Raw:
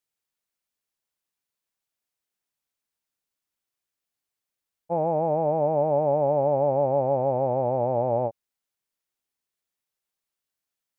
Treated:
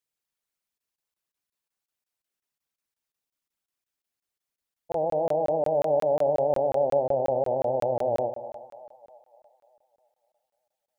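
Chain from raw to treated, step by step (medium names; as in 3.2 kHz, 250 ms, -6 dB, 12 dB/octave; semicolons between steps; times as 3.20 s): resonances exaggerated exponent 1.5; two-band feedback delay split 680 Hz, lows 111 ms, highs 300 ms, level -10 dB; crackling interface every 0.18 s, samples 1024, zero, from 0.78 s; trim -1.5 dB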